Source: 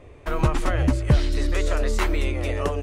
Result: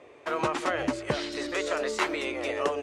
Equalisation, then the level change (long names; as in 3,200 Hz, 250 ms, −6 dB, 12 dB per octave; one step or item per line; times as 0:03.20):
band-pass filter 350–7,800 Hz
0.0 dB